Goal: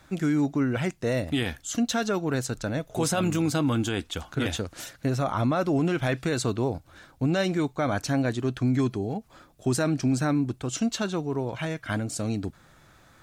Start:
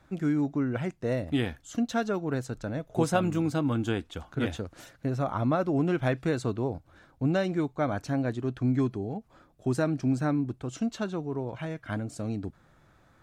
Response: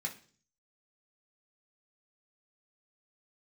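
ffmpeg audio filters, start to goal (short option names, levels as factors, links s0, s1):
-af "highshelf=f=2200:g=10,alimiter=limit=0.0944:level=0:latency=1:release=11,volume=1.5"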